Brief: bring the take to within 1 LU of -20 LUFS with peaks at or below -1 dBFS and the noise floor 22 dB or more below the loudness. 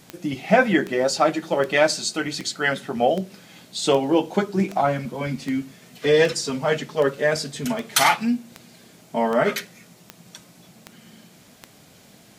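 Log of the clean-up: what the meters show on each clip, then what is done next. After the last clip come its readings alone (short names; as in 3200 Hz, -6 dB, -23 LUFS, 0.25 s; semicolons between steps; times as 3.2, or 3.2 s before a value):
clicks 16; loudness -22.0 LUFS; peak -1.5 dBFS; loudness target -20.0 LUFS
-> de-click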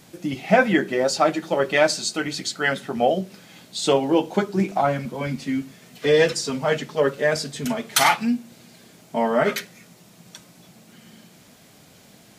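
clicks 0; loudness -22.0 LUFS; peak -1.5 dBFS; loudness target -20.0 LUFS
-> gain +2 dB; limiter -1 dBFS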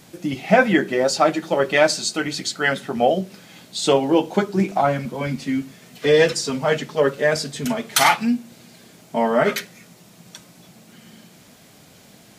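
loudness -20.0 LUFS; peak -1.0 dBFS; noise floor -49 dBFS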